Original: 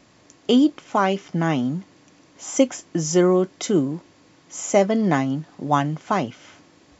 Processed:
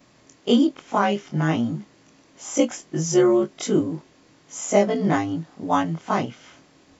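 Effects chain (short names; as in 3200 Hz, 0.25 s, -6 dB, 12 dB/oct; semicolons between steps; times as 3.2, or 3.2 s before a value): short-time reversal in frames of 50 ms; gain +2 dB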